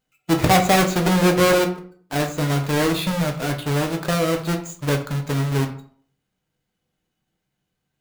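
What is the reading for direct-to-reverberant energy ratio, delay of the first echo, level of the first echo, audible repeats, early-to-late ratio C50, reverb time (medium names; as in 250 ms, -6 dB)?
3.0 dB, no echo, no echo, no echo, 10.5 dB, 0.55 s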